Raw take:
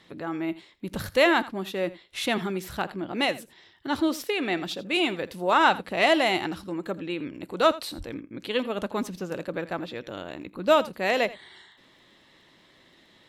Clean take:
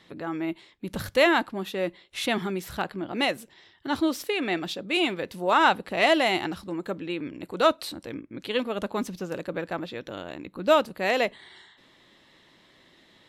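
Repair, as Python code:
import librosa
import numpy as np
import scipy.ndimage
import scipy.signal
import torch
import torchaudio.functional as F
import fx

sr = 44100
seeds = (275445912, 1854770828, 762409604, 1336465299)

y = fx.fix_declick_ar(x, sr, threshold=6.5)
y = fx.highpass(y, sr, hz=140.0, slope=24, at=(7.97, 8.09), fade=0.02)
y = fx.fix_echo_inverse(y, sr, delay_ms=83, level_db=-18.0)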